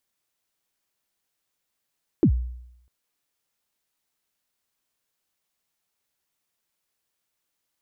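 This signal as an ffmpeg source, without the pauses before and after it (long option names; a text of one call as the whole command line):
ffmpeg -f lavfi -i "aevalsrc='0.266*pow(10,-3*t/0.79)*sin(2*PI*(390*0.083/log(61/390)*(exp(log(61/390)*min(t,0.083)/0.083)-1)+61*max(t-0.083,0)))':duration=0.65:sample_rate=44100" out.wav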